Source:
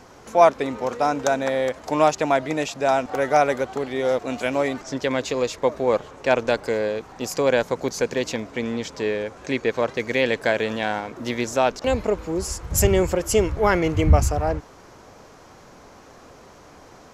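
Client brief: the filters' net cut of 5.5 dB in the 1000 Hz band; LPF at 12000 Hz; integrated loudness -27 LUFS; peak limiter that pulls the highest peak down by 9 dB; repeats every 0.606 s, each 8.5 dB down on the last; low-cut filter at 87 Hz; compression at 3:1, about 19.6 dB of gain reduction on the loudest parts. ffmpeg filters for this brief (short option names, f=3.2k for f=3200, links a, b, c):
-af "highpass=87,lowpass=12k,equalizer=f=1k:t=o:g=-8.5,acompressor=threshold=-41dB:ratio=3,alimiter=level_in=7dB:limit=-24dB:level=0:latency=1,volume=-7dB,aecho=1:1:606|1212|1818|2424:0.376|0.143|0.0543|0.0206,volume=15dB"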